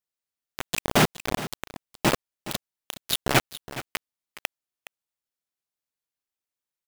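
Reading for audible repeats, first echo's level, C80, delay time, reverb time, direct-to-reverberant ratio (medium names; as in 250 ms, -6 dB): 1, -14.5 dB, no reverb, 417 ms, no reverb, no reverb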